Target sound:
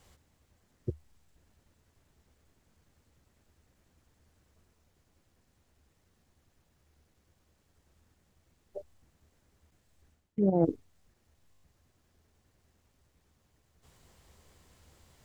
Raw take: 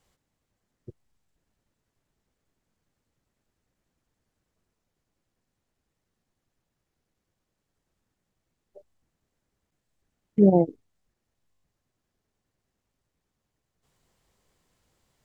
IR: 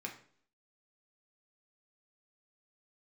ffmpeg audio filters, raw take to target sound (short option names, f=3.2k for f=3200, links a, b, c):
-af "equalizer=f=76:w=3.9:g=12,areverse,acompressor=threshold=-31dB:ratio=10,areverse,volume=8.5dB"